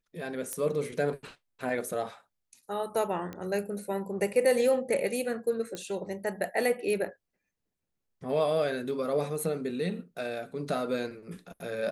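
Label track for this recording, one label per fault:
0.530000	0.530000	pop -19 dBFS
3.330000	3.330000	pop -25 dBFS
5.750000	5.750000	pop -22 dBFS

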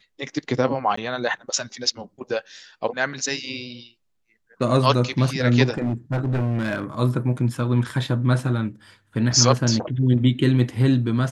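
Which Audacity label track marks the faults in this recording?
0.960000	0.970000	dropout 14 ms
5.770000	6.840000	clipped -19 dBFS

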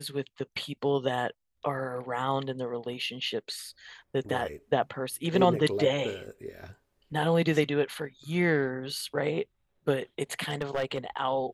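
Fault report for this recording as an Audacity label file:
10.480000	10.980000	clipped -24 dBFS

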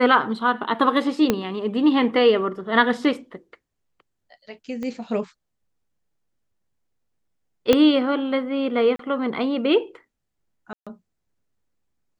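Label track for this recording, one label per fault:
1.300000	1.300000	pop -5 dBFS
4.830000	4.830000	pop -20 dBFS
7.730000	7.730000	pop -3 dBFS
8.960000	8.990000	dropout 33 ms
10.730000	10.870000	dropout 136 ms

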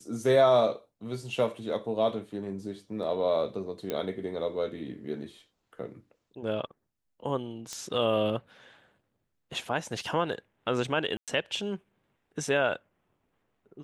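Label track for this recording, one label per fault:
3.900000	3.900000	pop -17 dBFS
7.730000	7.730000	pop -23 dBFS
11.170000	11.280000	dropout 107 ms

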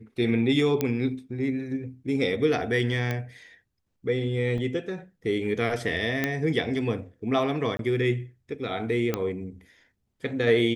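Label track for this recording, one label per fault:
0.810000	0.810000	pop -11 dBFS
3.110000	3.110000	pop -16 dBFS
4.580000	4.580000	dropout 2.8 ms
6.240000	6.240000	pop -11 dBFS
7.770000	7.790000	dropout 22 ms
9.140000	9.140000	pop -12 dBFS

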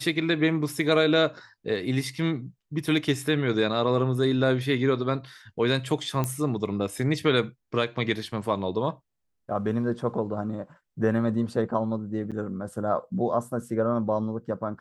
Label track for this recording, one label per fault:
6.240000	6.240000	pop -14 dBFS
12.310000	12.320000	dropout 7.3 ms

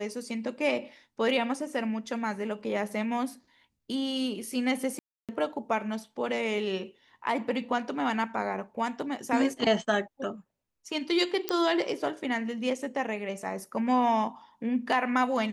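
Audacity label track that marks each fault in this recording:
4.990000	5.290000	dropout 297 ms
11.490000	11.490000	pop -11 dBFS

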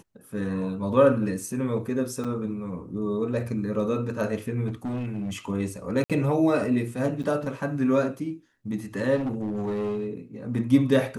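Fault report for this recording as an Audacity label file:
2.240000	2.250000	dropout 5.8 ms
4.670000	5.370000	clipped -26.5 dBFS
6.040000	6.100000	dropout 57 ms
7.230000	7.240000	dropout 7.4 ms
9.150000	10.070000	clipped -24.5 dBFS

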